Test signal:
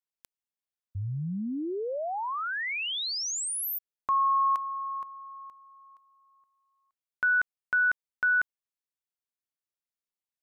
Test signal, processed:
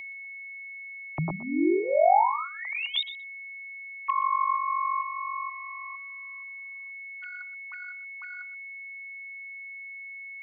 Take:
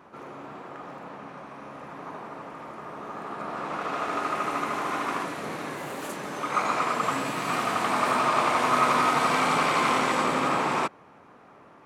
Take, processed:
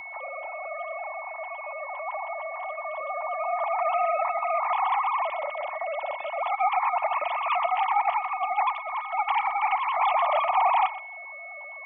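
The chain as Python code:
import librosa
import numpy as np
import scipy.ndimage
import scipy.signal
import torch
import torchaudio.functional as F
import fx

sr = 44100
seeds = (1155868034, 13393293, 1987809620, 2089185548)

y = fx.sine_speech(x, sr)
y = fx.dynamic_eq(y, sr, hz=190.0, q=1.3, threshold_db=-44.0, ratio=4.0, max_db=-4)
y = fx.over_compress(y, sr, threshold_db=-27.0, ratio=-0.5)
y = y + 10.0 ** (-37.0 / 20.0) * np.sin(2.0 * np.pi * 2200.0 * np.arange(len(y)) / sr)
y = fx.fixed_phaser(y, sr, hz=310.0, stages=8)
y = y + 10.0 ** (-15.5 / 20.0) * np.pad(y, (int(123 * sr / 1000.0), 0))[:len(y)]
y = y * 10.0 ** (7.0 / 20.0)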